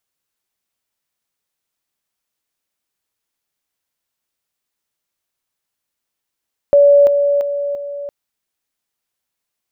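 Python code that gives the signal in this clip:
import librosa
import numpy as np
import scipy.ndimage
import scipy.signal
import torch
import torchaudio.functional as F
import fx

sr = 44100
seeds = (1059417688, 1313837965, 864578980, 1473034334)

y = fx.level_ladder(sr, hz=571.0, from_db=-5.5, step_db=-6.0, steps=4, dwell_s=0.34, gap_s=0.0)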